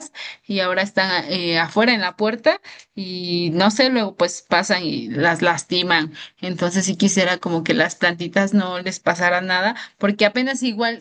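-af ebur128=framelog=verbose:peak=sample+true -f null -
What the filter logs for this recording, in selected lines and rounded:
Integrated loudness:
  I:         -19.0 LUFS
  Threshold: -29.3 LUFS
Loudness range:
  LRA:         1.1 LU
  Threshold: -39.2 LUFS
  LRA low:   -19.7 LUFS
  LRA high:  -18.6 LUFS
Sample peak:
  Peak:       -1.7 dBFS
True peak:
  Peak:       -1.6 dBFS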